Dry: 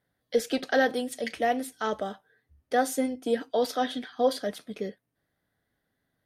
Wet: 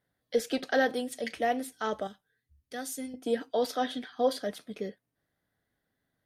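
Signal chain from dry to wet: 2.07–3.14 s: peaking EQ 690 Hz -14.5 dB 2.9 oct; trim -2.5 dB

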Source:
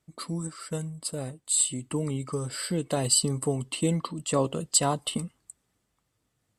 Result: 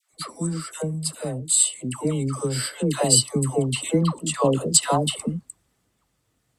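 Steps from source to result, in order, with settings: phase dispersion lows, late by 126 ms, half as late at 730 Hz; trim +5.5 dB

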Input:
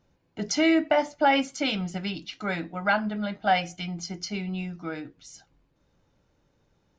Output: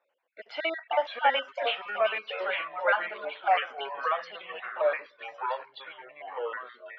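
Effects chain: random holes in the spectrogram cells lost 36%; ever faster or slower copies 430 ms, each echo -4 st, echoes 3; elliptic band-pass 550–3100 Hz, stop band 80 dB

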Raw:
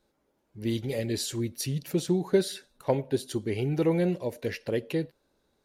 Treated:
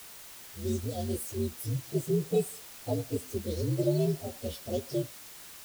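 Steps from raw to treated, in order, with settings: frequency axis rescaled in octaves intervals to 128%; Butterworth band-stop 1.4 kHz, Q 0.53; added noise white -48 dBFS

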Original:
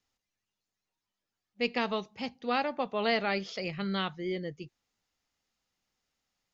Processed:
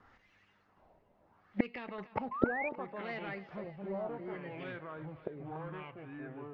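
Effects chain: peaking EQ 2.8 kHz -3 dB 1.1 oct; band-stop 2.4 kHz, Q 23; in parallel at +3 dB: peak limiter -27 dBFS, peak gain reduction 10.5 dB; 1.98–2.69 s: on the sum: waveshaping leveller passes 2; one-sided clip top -22.5 dBFS, bottom -18.5 dBFS; ever faster or slower copies 767 ms, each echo -4 st, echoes 2; inverted gate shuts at -27 dBFS, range -31 dB; LFO low-pass sine 0.71 Hz 620–2400 Hz; on a send: thinning echo 285 ms, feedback 73%, high-pass 350 Hz, level -16 dB; 2.31–2.69 s: on the sum: painted sound rise 1–2.5 kHz -52 dBFS; trim +13.5 dB

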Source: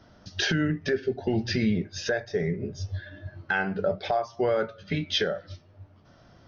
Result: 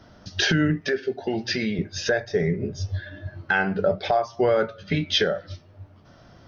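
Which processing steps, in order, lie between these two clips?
0.81–1.79 s: high-pass 440 Hz 6 dB/octave; trim +4.5 dB

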